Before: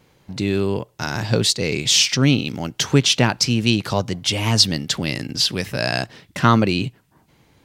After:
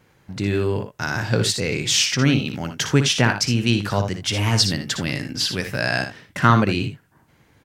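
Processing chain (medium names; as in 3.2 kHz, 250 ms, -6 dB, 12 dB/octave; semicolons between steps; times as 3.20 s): fifteen-band graphic EQ 100 Hz +3 dB, 1.6 kHz +6 dB, 4 kHz -3 dB; on a send: early reflections 59 ms -9 dB, 79 ms -13 dB; on the sum: trim -2.5 dB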